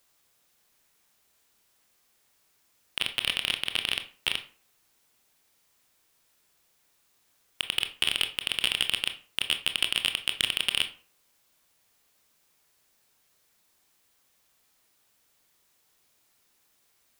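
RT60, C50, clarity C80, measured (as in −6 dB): 0.45 s, 12.5 dB, 18.0 dB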